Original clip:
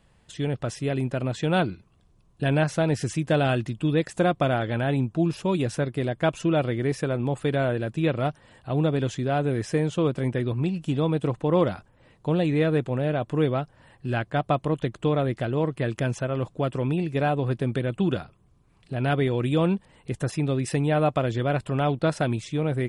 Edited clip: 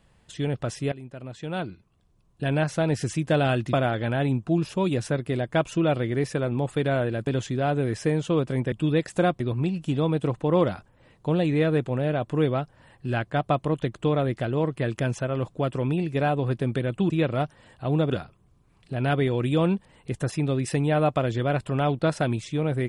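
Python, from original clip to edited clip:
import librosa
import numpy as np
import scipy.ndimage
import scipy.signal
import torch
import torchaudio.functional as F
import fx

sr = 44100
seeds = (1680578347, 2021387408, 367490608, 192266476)

y = fx.edit(x, sr, fx.fade_in_from(start_s=0.92, length_s=2.13, floor_db=-16.5),
    fx.move(start_s=3.73, length_s=0.68, to_s=10.4),
    fx.move(start_s=7.95, length_s=1.0, to_s=18.1), tone=tone)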